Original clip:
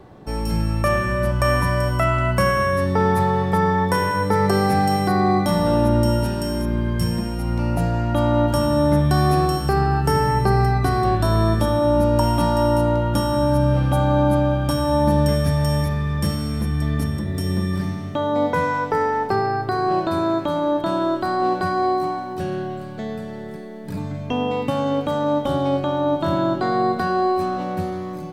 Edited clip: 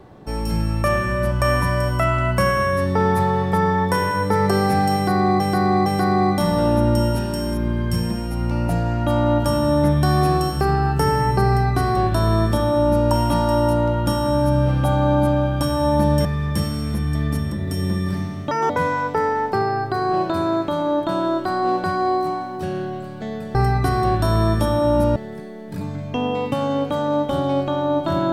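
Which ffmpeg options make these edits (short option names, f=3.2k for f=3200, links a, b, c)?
-filter_complex "[0:a]asplit=8[a][b][c][d][e][f][g][h];[a]atrim=end=5.402[i];[b]atrim=start=4.938:end=5.402[j];[c]atrim=start=4.938:end=15.332[k];[d]atrim=start=15.918:end=18.184[l];[e]atrim=start=18.18:end=18.47,asetpts=PTS-STARTPTS,asetrate=67914,aresample=44100[m];[f]atrim=start=18.466:end=23.322[n];[g]atrim=start=10.548:end=12.162[o];[h]atrim=start=23.318[p];[i][j]acrossfade=d=0.004:c1=hsin:c2=hsin[q];[q][k]acrossfade=d=0.004:c1=hsin:c2=hsin[r];[r][l]acrossfade=d=0.004:c1=hsin:c2=hsin[s];[s][m]acrossfade=d=0.004:c1=hsin:c2=hsin[t];[t][n]acrossfade=d=0.004:c1=hsin:c2=hsin[u];[u][o]acrossfade=d=0.004:c1=hsin:c2=hsin[v];[v][p]acrossfade=d=0.004:c1=hsin:c2=hsin"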